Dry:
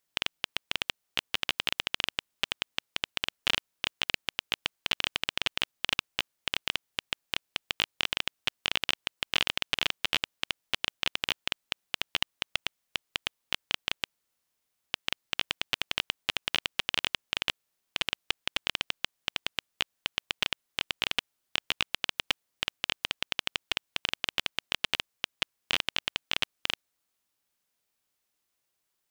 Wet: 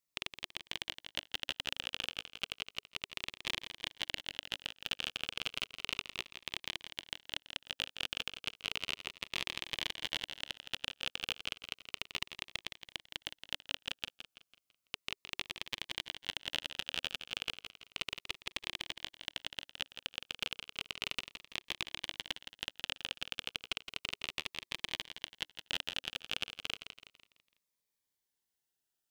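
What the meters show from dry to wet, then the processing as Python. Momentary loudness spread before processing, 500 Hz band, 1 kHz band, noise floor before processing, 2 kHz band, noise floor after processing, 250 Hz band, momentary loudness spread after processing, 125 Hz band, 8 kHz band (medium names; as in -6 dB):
6 LU, -8.5 dB, -10.0 dB, -81 dBFS, -8.5 dB, under -85 dBFS, -7.0 dB, 5 LU, -6.5 dB, -6.5 dB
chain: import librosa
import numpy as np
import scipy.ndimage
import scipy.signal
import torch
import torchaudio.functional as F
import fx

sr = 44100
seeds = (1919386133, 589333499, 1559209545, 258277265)

p1 = x + fx.echo_feedback(x, sr, ms=166, feedback_pct=42, wet_db=-9.5, dry=0)
p2 = fx.notch_cascade(p1, sr, direction='falling', hz=0.33)
y = F.gain(torch.from_numpy(p2), -7.0).numpy()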